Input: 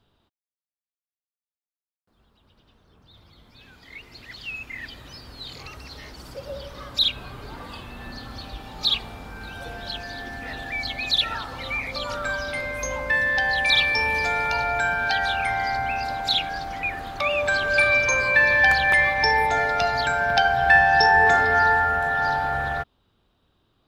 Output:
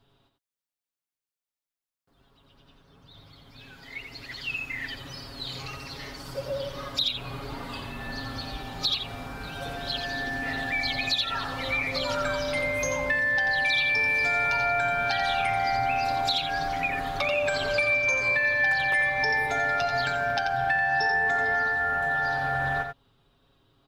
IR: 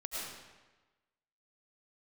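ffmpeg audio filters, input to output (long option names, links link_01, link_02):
-af "aecho=1:1:7.3:0.65,acompressor=threshold=-24dB:ratio=6,aecho=1:1:87:0.447"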